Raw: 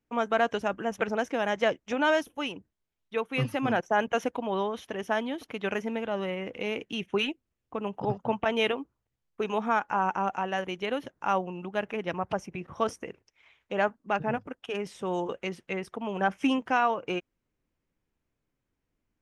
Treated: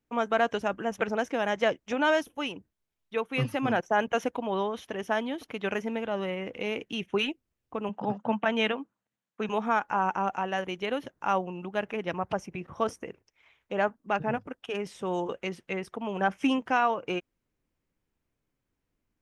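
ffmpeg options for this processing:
-filter_complex "[0:a]asettb=1/sr,asplit=3[a][b][c];[a]atrim=end=7.894[d];[b]atrim=start=7.89:end=9.49,asetpts=PTS-STARTPTS,afade=t=in:d=0.004:c=qsin,afade=t=out:st=1.596:d=0.004:c=qsin,highpass=210,equalizer=f=210:t=q:w=4:g=8,equalizer=f=380:t=q:w=4:g=-7,equalizer=f=1.6k:t=q:w=4:g=4,equalizer=f=5k:t=q:w=4:g=-7,lowpass=f=8.4k:w=0.5412,lowpass=f=8.4k:w=1.3066[e];[c]atrim=start=9.486[f];[d][e]acrossfade=d=0.004:c1=hsin:c2=qsin[g];[g][f]acrossfade=d=0.004:c1=qsin:c2=hsin,asettb=1/sr,asplit=3[h][i][j];[h]atrim=end=12.704[k];[i]atrim=start=12.7:end=14.03,asetpts=PTS-STARTPTS,afade=t=in:d=0.004:c=qsin,afade=t=out:st=1.326:d=0.004:c=qsin,equalizer=f=3.9k:w=0.48:g=-2.5[l];[j]atrim=start=14.026[m];[k][l]acrossfade=d=0.004:c1=hsin:c2=qsin[n];[n][m]acrossfade=d=0.004:c1=qsin:c2=hsin"

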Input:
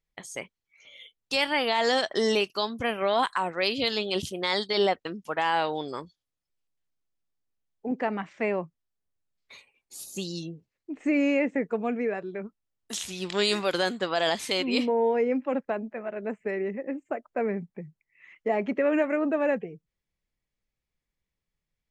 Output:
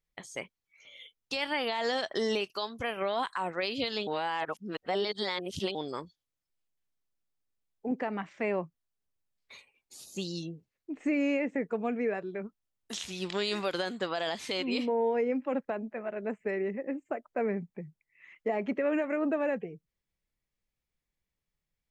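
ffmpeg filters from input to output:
-filter_complex "[0:a]asettb=1/sr,asplit=3[a][b][c];[a]atrim=end=2.454[d];[b]atrim=start=2.45:end=2.97,asetpts=PTS-STARTPTS,afade=t=in:d=0.004:c=qsin,afade=t=out:st=0.516:d=0.004:c=qsin,equalizer=f=210:t=o:w=1.4:g=-6[e];[c]atrim=start=2.966[f];[d][e]acrossfade=d=0.004:c1=hsin:c2=qsin[g];[g][f]acrossfade=d=0.004:c1=qsin:c2=hsin,asplit=3[h][i][j];[h]atrim=end=4.072[k];[i]atrim=start=4.068:end=5.752,asetpts=PTS-STARTPTS,areverse[l];[j]atrim=start=5.748[m];[k][l]acrossfade=d=0.004:c1=hsin:c2=hsin[n];[n][m]acrossfade=d=0.004:c1=hsin:c2=hsin,acrossover=split=6400[o][p];[p]acompressor=threshold=-51dB:ratio=4:attack=1:release=60[q];[o][q]amix=inputs=2:normalize=0,alimiter=limit=-19dB:level=0:latency=1:release=141,volume=-2dB"

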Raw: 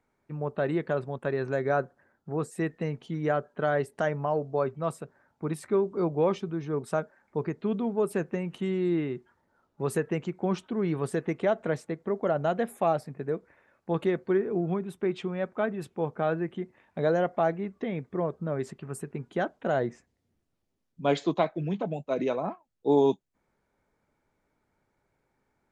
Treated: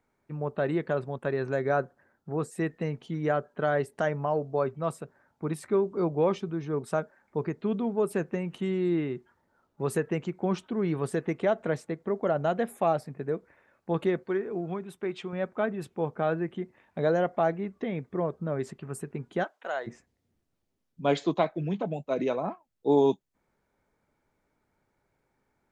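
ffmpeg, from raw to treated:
-filter_complex "[0:a]asettb=1/sr,asplit=3[a][b][c];[a]atrim=end=14.234[d];[b]atrim=start=14.23:end=15.33,asetpts=PTS-STARTPTS,afade=t=in:d=0.004:c=qsin,afade=t=out:st=1.096:d=0.004:c=qsin,lowshelf=f=440:g=-7[e];[c]atrim=start=15.326[f];[d][e]acrossfade=d=0.004:c1=hsin:c2=qsin[g];[g][f]acrossfade=d=0.004:c1=qsin:c2=hsin,asplit=3[h][i][j];[h]afade=t=out:st=19.43:d=0.02[k];[i]highpass=830,afade=t=in:st=19.43:d=0.02,afade=t=out:st=19.86:d=0.02[l];[j]afade=t=in:st=19.86:d=0.02[m];[k][l][m]amix=inputs=3:normalize=0"

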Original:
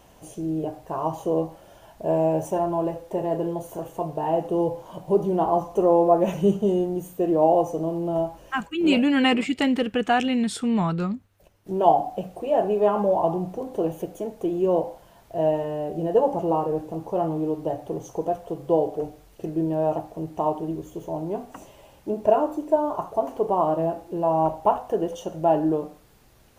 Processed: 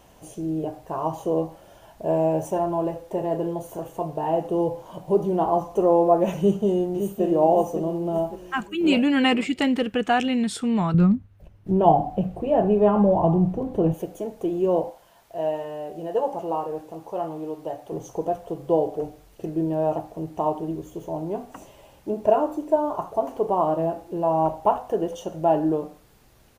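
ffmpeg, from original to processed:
-filter_complex "[0:a]asplit=2[a][b];[b]afade=t=in:st=6.38:d=0.01,afade=t=out:st=7.23:d=0.01,aecho=0:1:560|1120|1680|2240|2800:0.421697|0.189763|0.0853935|0.0384271|0.0172922[c];[a][c]amix=inputs=2:normalize=0,asettb=1/sr,asplit=3[d][e][f];[d]atrim=end=10.944[g];[e]atrim=start=10.94:end=13.94,asetpts=PTS-STARTPTS,afade=t=in:d=0.004:c=qsin,afade=t=out:st=2.996:d=0.004:c=qsin,bass=f=250:g=14,treble=f=4k:g=-9[h];[f]atrim=start=13.936[i];[g][h]acrossfade=d=0.004:c1=hsin:c2=qsin[j];[j][i]acrossfade=d=0.004:c1=qsin:c2=hsin,asettb=1/sr,asplit=3[k][l][m];[k]atrim=end=14.904[n];[l]atrim=start=14.9:end=17.92,asetpts=PTS-STARTPTS,afade=t=in:d=0.004:c=qsin,afade=t=out:st=3.016:d=0.004:c=qsin,lowshelf=f=400:g=-11.5[o];[m]atrim=start=17.916[p];[n][o]acrossfade=d=0.004:c1=hsin:c2=qsin[q];[q][p]acrossfade=d=0.004:c1=qsin:c2=hsin"

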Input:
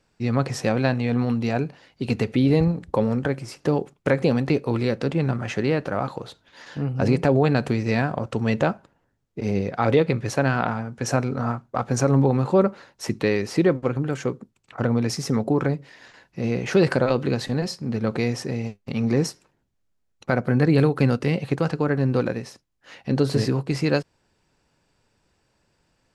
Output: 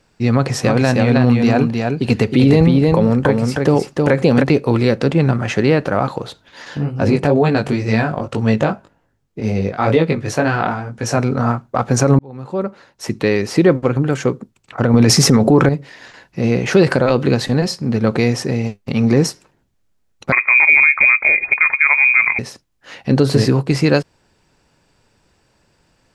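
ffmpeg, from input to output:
-filter_complex "[0:a]asplit=3[a][b][c];[a]afade=t=out:st=0.63:d=0.02[d];[b]aecho=1:1:313:0.631,afade=t=in:st=0.63:d=0.02,afade=t=out:st=4.42:d=0.02[e];[c]afade=t=in:st=4.42:d=0.02[f];[d][e][f]amix=inputs=3:normalize=0,asplit=3[g][h][i];[g]afade=t=out:st=6.77:d=0.02[j];[h]flanger=delay=18:depth=3:speed=2,afade=t=in:st=6.77:d=0.02,afade=t=out:st=11.17:d=0.02[k];[i]afade=t=in:st=11.17:d=0.02[l];[j][k][l]amix=inputs=3:normalize=0,asettb=1/sr,asplit=3[m][n][o];[m]atrim=end=20.324[p];[n]atrim=start=20.32:end=22.39,asetpts=PTS-STARTPTS,afade=t=in:d=0.004:c=qsin,afade=t=out:st=2.066:d=0.004:c=qsin,lowpass=f=2.2k:t=q:w=0.5098,lowpass=f=2.2k:t=q:w=0.6013,lowpass=f=2.2k:t=q:w=0.9,lowpass=f=2.2k:t=q:w=2.563,afreqshift=-2600[q];[o]atrim=start=22.386[r];[p][q]acrossfade=d=0.004:c1=hsin:c2=qsin[s];[s][r]acrossfade=d=0.004:c1=qsin:c2=hsin,asplit=4[t][u][v][w];[t]atrim=end=12.19,asetpts=PTS-STARTPTS,afade=t=out:st=12.186:d=0.004:c=hsin[x];[u]atrim=start=12.19:end=14.942,asetpts=PTS-STARTPTS,afade=t=in:d=1.52[y];[v]atrim=start=14.938:end=15.692,asetpts=PTS-STARTPTS,volume=12dB[z];[w]atrim=start=15.688[aa];[x][y]concat=n=2:v=0:a=1[ab];[ab][z]acrossfade=d=0.004:c1=hsin:c2=hsin[ac];[ac][aa]acrossfade=d=0.004:c1=hsin:c2=hsin,alimiter=level_in=9.5dB:limit=-1dB:release=50:level=0:latency=1,volume=-1dB"

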